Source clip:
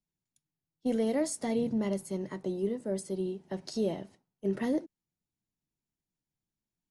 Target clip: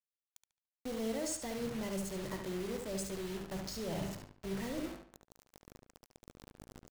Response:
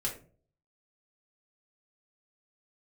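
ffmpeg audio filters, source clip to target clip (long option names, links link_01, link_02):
-filter_complex "[0:a]lowpass=frequency=7300:width_type=q:width=1.8,bandreject=frequency=50:width_type=h:width=6,bandreject=frequency=100:width_type=h:width=6,bandreject=frequency=150:width_type=h:width=6,bandreject=frequency=200:width_type=h:width=6,bandreject=frequency=250:width_type=h:width=6,bandreject=frequency=300:width_type=h:width=6,bandreject=frequency=350:width_type=h:width=6,bandreject=frequency=400:width_type=h:width=6,areverse,acompressor=threshold=-42dB:ratio=12,areverse,aeval=exprs='val(0)+0.000251*(sin(2*PI*50*n/s)+sin(2*PI*2*50*n/s)/2+sin(2*PI*3*50*n/s)/3+sin(2*PI*4*50*n/s)/4+sin(2*PI*5*50*n/s)/5)':channel_layout=same,asubboost=boost=8.5:cutoff=91,asoftclip=type=tanh:threshold=-39.5dB,acrusher=bits=8:mix=0:aa=0.000001,asplit=2[link_01][link_02];[link_02]adelay=72,lowpass=frequency=4400:poles=1,volume=-5dB,asplit=2[link_03][link_04];[link_04]adelay=72,lowpass=frequency=4400:poles=1,volume=0.35,asplit=2[link_05][link_06];[link_06]adelay=72,lowpass=frequency=4400:poles=1,volume=0.35,asplit=2[link_07][link_08];[link_08]adelay=72,lowpass=frequency=4400:poles=1,volume=0.35[link_09];[link_01][link_03][link_05][link_07][link_09]amix=inputs=5:normalize=0,volume=8dB"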